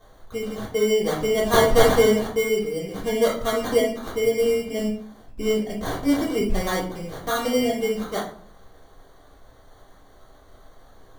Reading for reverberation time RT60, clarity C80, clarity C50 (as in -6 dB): 0.55 s, 11.0 dB, 6.0 dB